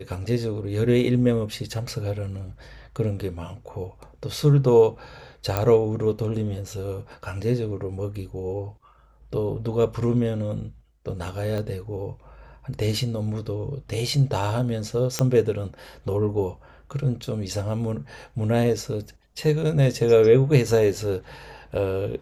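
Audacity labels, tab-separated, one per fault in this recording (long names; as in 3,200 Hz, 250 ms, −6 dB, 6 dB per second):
5.570000	5.570000	click −8 dBFS
11.580000	11.580000	click −19 dBFS
15.190000	15.190000	click −7 dBFS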